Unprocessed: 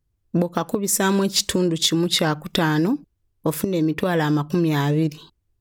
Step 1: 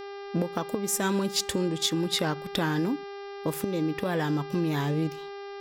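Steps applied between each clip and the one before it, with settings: mains buzz 400 Hz, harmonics 14, -32 dBFS -7 dB/octave; trim -7.5 dB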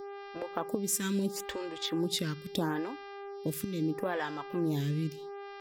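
lamp-driven phase shifter 0.76 Hz; trim -2 dB

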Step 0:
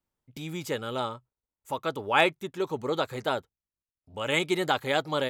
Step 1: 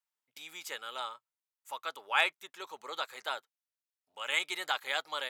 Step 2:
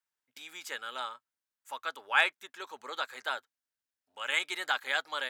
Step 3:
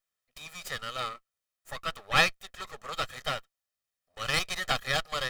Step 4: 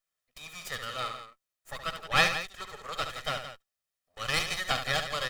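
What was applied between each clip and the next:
high-pass 1.1 kHz 12 dB/octave; trim -2.5 dB
graphic EQ with 31 bands 100 Hz +7 dB, 160 Hz -6 dB, 250 Hz +7 dB, 1.6 kHz +7 dB, 12.5 kHz -4 dB
comb filter that takes the minimum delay 1.6 ms; trim +4 dB
loudspeakers at several distances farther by 24 m -8 dB, 58 m -11 dB; trim -1 dB

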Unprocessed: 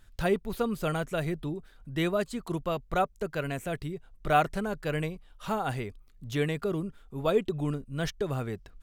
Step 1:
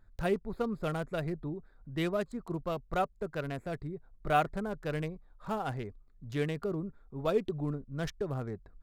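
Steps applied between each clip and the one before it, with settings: local Wiener filter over 15 samples; trim -3.5 dB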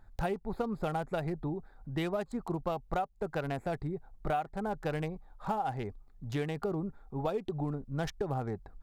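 peaking EQ 810 Hz +12 dB 0.32 oct; compression 12:1, threshold -33 dBFS, peak gain reduction 17 dB; trim +4 dB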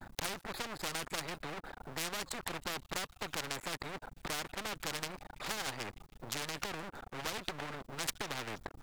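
feedback echo behind a high-pass 160 ms, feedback 58%, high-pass 4.3 kHz, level -21.5 dB; half-wave rectifier; spectrum-flattening compressor 4:1; trim +9.5 dB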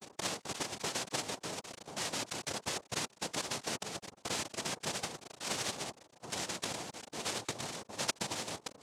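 tracing distortion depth 0.068 ms; in parallel at -11 dB: bit crusher 6-bit; on the sum: noise-vocoded speech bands 2

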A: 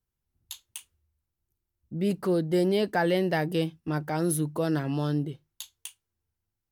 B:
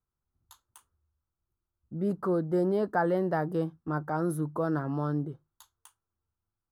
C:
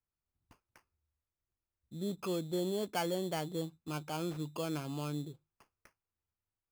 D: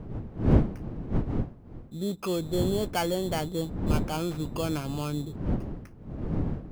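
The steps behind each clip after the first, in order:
resonant high shelf 1.8 kHz -11.5 dB, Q 3; trim -3 dB
sample-rate reducer 3.8 kHz, jitter 0%; trim -8 dB
wind noise 200 Hz -37 dBFS; trim +6.5 dB

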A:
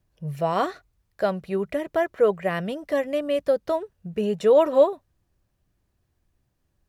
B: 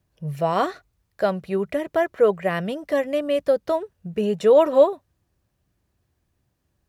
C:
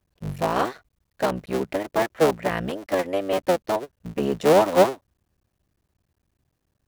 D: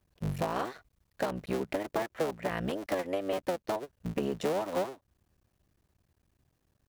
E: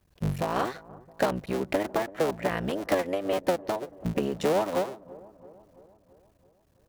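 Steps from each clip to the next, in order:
high-pass 50 Hz; trim +2 dB
cycle switcher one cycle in 3, muted
compression 8:1, threshold -28 dBFS, peak gain reduction 17.5 dB
tremolo triangle 1.8 Hz, depth 45%; feedback echo behind a low-pass 334 ms, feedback 58%, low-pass 920 Hz, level -19 dB; trim +7 dB

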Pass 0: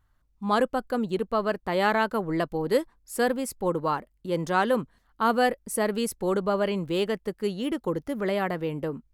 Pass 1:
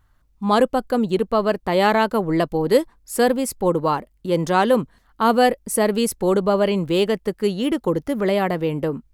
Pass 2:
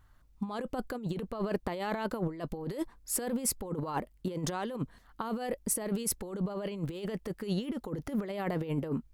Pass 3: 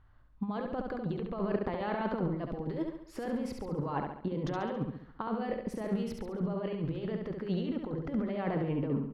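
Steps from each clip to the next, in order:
dynamic bell 1.5 kHz, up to -5 dB, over -41 dBFS, Q 1.7; trim +7.5 dB
peak limiter -13.5 dBFS, peak gain reduction 10 dB; compressor with a negative ratio -26 dBFS, ratio -0.5; trim -6.5 dB
distance through air 280 m; on a send: feedback delay 69 ms, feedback 48%, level -4.5 dB

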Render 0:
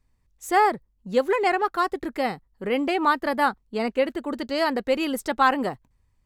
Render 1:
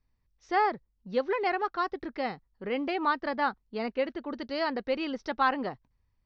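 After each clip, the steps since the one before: Chebyshev low-pass 5.8 kHz, order 6; trim -6 dB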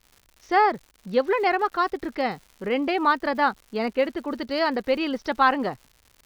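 crackle 200 per s -46 dBFS; trim +6.5 dB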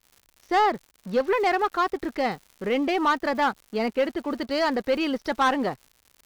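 waveshaping leveller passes 2; trim -6.5 dB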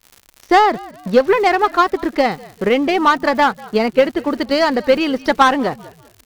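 frequency-shifting echo 195 ms, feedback 36%, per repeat -60 Hz, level -21 dB; transient shaper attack +6 dB, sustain +1 dB; trim +7 dB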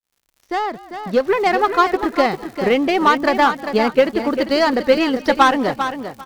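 fade-in on the opening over 1.75 s; on a send: feedback delay 397 ms, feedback 18%, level -9 dB; on the sum: trim -1 dB

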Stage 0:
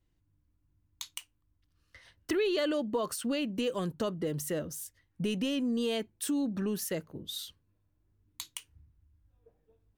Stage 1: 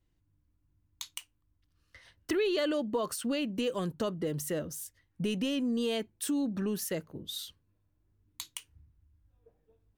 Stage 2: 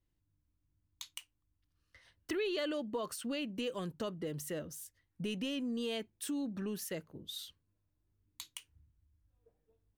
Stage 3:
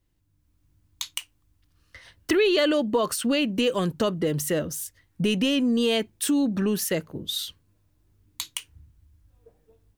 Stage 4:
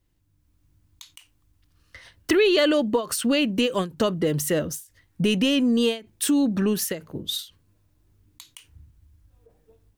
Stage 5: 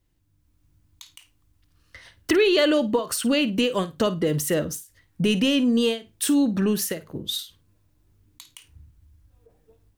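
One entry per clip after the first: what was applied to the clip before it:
no audible change
dynamic bell 2.6 kHz, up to +3 dB, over -51 dBFS, Q 1; trim -6.5 dB
level rider gain up to 5.5 dB; trim +9 dB
endings held to a fixed fall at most 190 dB/s; trim +2 dB
flutter echo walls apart 9 m, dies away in 0.21 s

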